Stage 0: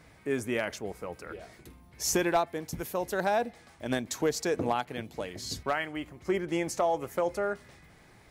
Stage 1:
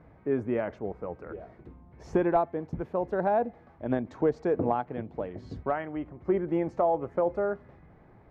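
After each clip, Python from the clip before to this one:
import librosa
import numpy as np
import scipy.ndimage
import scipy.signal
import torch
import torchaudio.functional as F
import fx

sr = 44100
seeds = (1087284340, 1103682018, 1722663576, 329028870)

y = scipy.signal.sosfilt(scipy.signal.butter(2, 1000.0, 'lowpass', fs=sr, output='sos'), x)
y = F.gain(torch.from_numpy(y), 3.0).numpy()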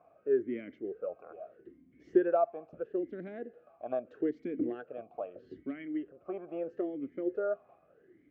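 y = fx.vowel_sweep(x, sr, vowels='a-i', hz=0.78)
y = F.gain(torch.from_numpy(y), 5.0).numpy()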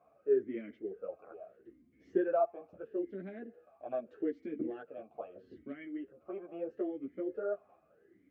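y = fx.ensemble(x, sr)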